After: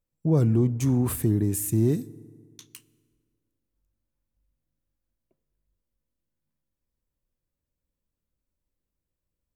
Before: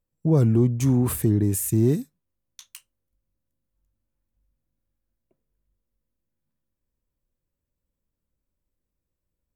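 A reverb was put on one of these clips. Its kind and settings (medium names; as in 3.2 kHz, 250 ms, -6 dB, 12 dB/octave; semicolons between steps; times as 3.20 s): FDN reverb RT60 2 s, low-frequency decay 1×, high-frequency decay 0.65×, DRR 20 dB; trim -2.5 dB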